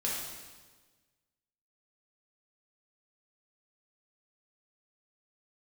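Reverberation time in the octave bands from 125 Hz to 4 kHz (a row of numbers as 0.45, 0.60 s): 1.7, 1.6, 1.4, 1.3, 1.3, 1.3 s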